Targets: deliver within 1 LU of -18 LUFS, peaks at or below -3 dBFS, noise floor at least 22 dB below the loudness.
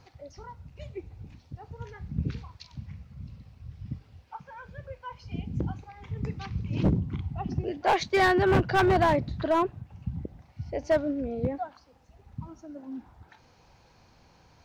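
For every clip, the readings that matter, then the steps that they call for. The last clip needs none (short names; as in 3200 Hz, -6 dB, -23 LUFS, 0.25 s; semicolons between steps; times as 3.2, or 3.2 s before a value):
clipped 0.8%; flat tops at -17.5 dBFS; loudness -28.0 LUFS; peak -17.5 dBFS; loudness target -18.0 LUFS
-> clip repair -17.5 dBFS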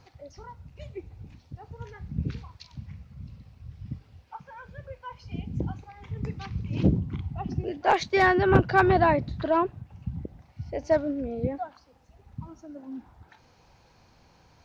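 clipped 0.0%; loudness -26.5 LUFS; peak -8.5 dBFS; loudness target -18.0 LUFS
-> gain +8.5 dB; limiter -3 dBFS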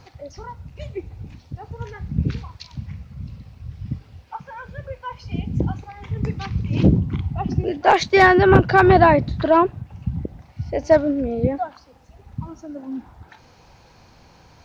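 loudness -18.5 LUFS; peak -3.0 dBFS; noise floor -51 dBFS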